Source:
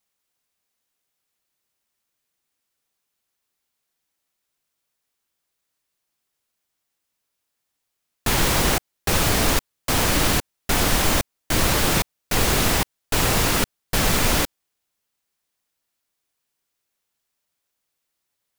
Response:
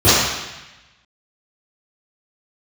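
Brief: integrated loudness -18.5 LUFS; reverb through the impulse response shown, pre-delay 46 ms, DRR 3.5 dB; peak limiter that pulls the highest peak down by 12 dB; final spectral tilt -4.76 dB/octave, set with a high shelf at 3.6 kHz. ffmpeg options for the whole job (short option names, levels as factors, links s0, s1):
-filter_complex "[0:a]highshelf=f=3600:g=-7.5,alimiter=limit=0.112:level=0:latency=1,asplit=2[s0][s1];[1:a]atrim=start_sample=2205,adelay=46[s2];[s1][s2]afir=irnorm=-1:irlink=0,volume=0.0266[s3];[s0][s3]amix=inputs=2:normalize=0,volume=2.82"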